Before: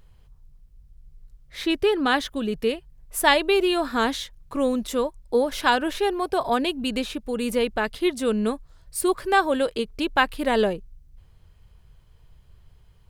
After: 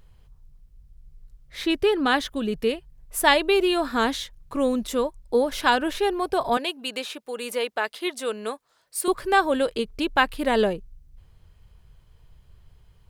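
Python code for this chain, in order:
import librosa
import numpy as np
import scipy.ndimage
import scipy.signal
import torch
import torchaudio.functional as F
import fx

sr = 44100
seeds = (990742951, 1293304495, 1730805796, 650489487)

y = fx.highpass(x, sr, hz=510.0, slope=12, at=(6.57, 9.08))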